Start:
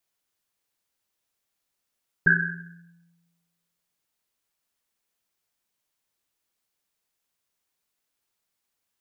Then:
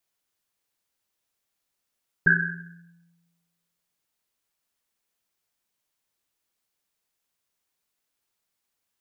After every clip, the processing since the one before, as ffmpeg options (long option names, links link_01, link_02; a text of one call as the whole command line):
ffmpeg -i in.wav -af anull out.wav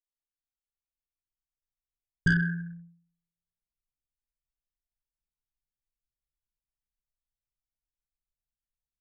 ffmpeg -i in.wav -af "aeval=exprs='0.447*(cos(1*acos(clip(val(0)/0.447,-1,1)))-cos(1*PI/2))+0.0562*(cos(5*acos(clip(val(0)/0.447,-1,1)))-cos(5*PI/2))':channel_layout=same,anlmdn=0.251,asubboost=boost=8.5:cutoff=200,volume=-8dB" out.wav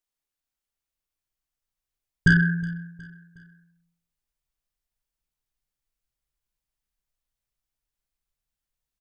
ffmpeg -i in.wav -af "aecho=1:1:365|730|1095:0.0841|0.0379|0.017,volume=6.5dB" out.wav